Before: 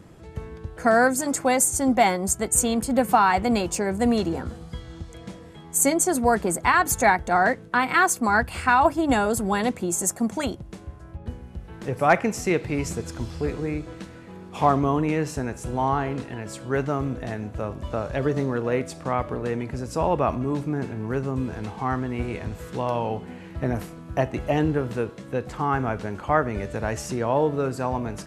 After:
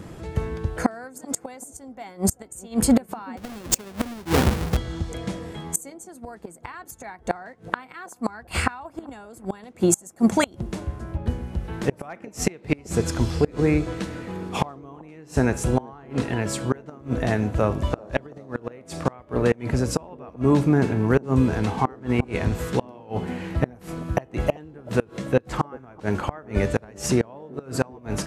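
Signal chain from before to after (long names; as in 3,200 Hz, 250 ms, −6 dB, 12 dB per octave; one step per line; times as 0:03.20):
0:03.37–0:04.77: each half-wave held at its own peak
gate with flip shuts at −15 dBFS, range −29 dB
delay with a band-pass on its return 386 ms, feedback 55%, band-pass 420 Hz, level −20 dB
level +8.5 dB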